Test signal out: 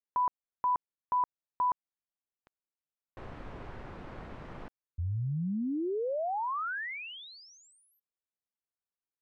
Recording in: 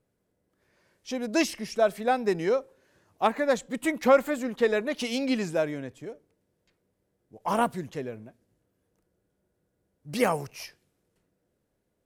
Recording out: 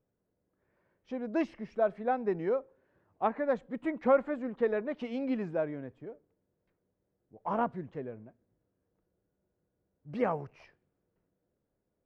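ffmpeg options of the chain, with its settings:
-af "lowpass=1.5k,volume=-5dB"

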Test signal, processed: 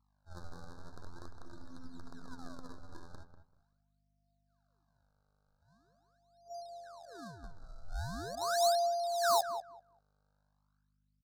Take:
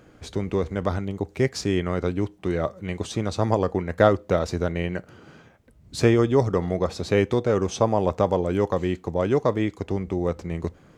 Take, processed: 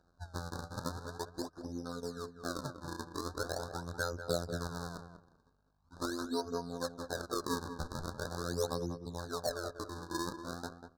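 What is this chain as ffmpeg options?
-filter_complex "[0:a]afwtdn=0.0316,highshelf=f=5.7k:g=-5.5,afftfilt=real='hypot(re,im)*cos(PI*b)':imag='0':win_size=2048:overlap=0.75,acompressor=threshold=-36dB:ratio=2.5,aphaser=in_gain=1:out_gain=1:delay=4.5:decay=0.59:speed=0.23:type=triangular,aeval=exprs='val(0)+0.000398*(sin(2*PI*50*n/s)+sin(2*PI*2*50*n/s)/2+sin(2*PI*3*50*n/s)/3+sin(2*PI*4*50*n/s)/4+sin(2*PI*5*50*n/s)/5)':c=same,acrusher=samples=37:mix=1:aa=0.000001:lfo=1:lforange=59.2:lforate=0.42,tiltshelf=f=890:g=-7,adynamicsmooth=sensitivity=4.5:basefreq=3.8k,asoftclip=type=hard:threshold=-20dB,asuperstop=centerf=2500:order=20:qfactor=1.2,asplit=2[a][b];[b]adelay=193,lowpass=f=1.6k:p=1,volume=-8.5dB,asplit=2[c][d];[d]adelay=193,lowpass=f=1.6k:p=1,volume=0.19,asplit=2[e][f];[f]adelay=193,lowpass=f=1.6k:p=1,volume=0.19[g];[c][e][g]amix=inputs=3:normalize=0[h];[a][h]amix=inputs=2:normalize=0"

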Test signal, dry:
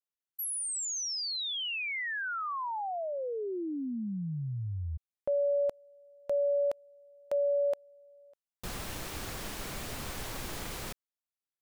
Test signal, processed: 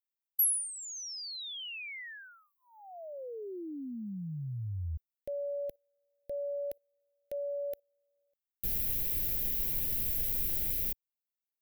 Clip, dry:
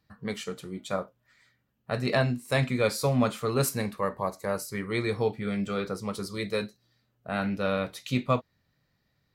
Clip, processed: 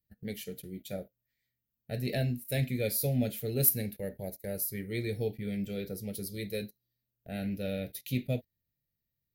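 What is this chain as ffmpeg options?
-af "agate=range=-13dB:threshold=-47dB:ratio=16:release=55:detection=rms,lowshelf=f=95:g=11,aexciter=amount=14.7:drive=2.3:freq=11k,asuperstop=centerf=1100:order=4:qfactor=0.86,volume=-6.5dB"

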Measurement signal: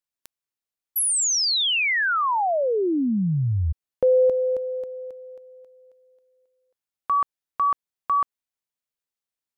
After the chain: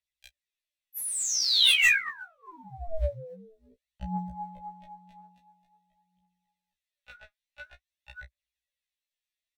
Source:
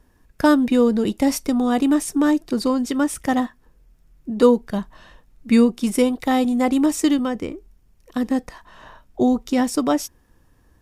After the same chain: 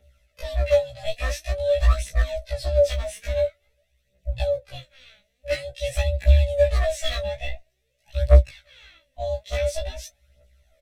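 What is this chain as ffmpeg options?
-filter_complex "[0:a]highpass=67,bandreject=f=1.8k:w=24,acrossover=split=350|5500[a][b][c];[a]acompressor=threshold=-34dB:ratio=5:attack=44:release=51:detection=rms[d];[c]alimiter=level_in=1.5dB:limit=-24dB:level=0:latency=1:release=91,volume=-1.5dB[e];[d][b][e]amix=inputs=3:normalize=0,acrossover=split=350[f][g];[g]acompressor=threshold=-23dB:ratio=10:attack=0.13:release=583:knee=2.83:detection=peak[h];[f][h]amix=inputs=2:normalize=0,asplit=3[i][j][k];[i]bandpass=f=270:t=q:w=8,volume=0dB[l];[j]bandpass=f=2.29k:t=q:w=8,volume=-6dB[m];[k]bandpass=f=3.01k:t=q:w=8,volume=-9dB[n];[l][m][n]amix=inputs=3:normalize=0,aeval=exprs='val(0)*sin(2*PI*330*n/s)':c=same,crystalizer=i=6.5:c=0,aeval=exprs='0.0631*(abs(mod(val(0)/0.0631+3,4)-2)-1)':c=same,aphaser=in_gain=1:out_gain=1:delay=4.9:decay=0.75:speed=0.48:type=triangular,asplit=2[o][p];[p]adelay=16,volume=-10dB[q];[o][q]amix=inputs=2:normalize=0,afftfilt=real='re*1.73*eq(mod(b,3),0)':imag='im*1.73*eq(mod(b,3),0)':win_size=2048:overlap=0.75,volume=8.5dB"

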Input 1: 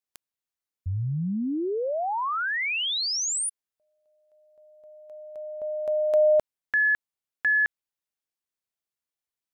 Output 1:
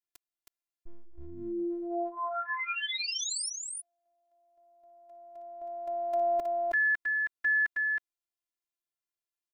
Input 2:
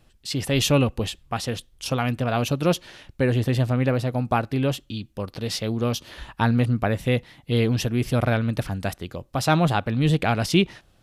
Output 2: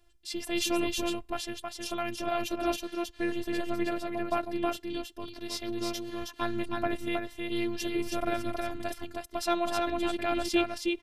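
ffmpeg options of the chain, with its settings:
-af "aecho=1:1:318:0.668,afftfilt=real='hypot(re,im)*cos(PI*b)':imag='0':win_size=512:overlap=0.75,volume=-4dB"

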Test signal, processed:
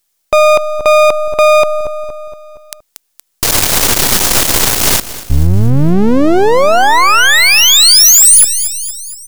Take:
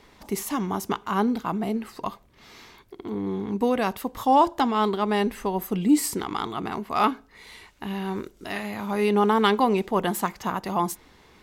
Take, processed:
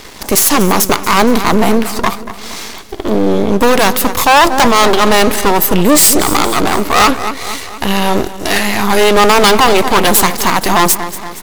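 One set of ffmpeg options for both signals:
-filter_complex "[0:a]aeval=exprs='max(val(0),0)':c=same,bass=f=250:g=-3,treble=f=4k:g=7,asplit=2[a][b];[b]aecho=0:1:234|468|702|936|1170:0.15|0.0793|0.042|0.0223|0.0118[c];[a][c]amix=inputs=2:normalize=0,apsyclip=25dB,volume=-1.5dB"

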